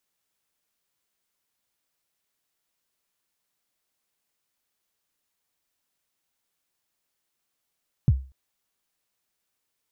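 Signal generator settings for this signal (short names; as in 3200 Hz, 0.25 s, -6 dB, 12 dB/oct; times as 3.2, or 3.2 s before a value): kick drum length 0.24 s, from 160 Hz, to 66 Hz, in 43 ms, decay 0.34 s, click off, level -11 dB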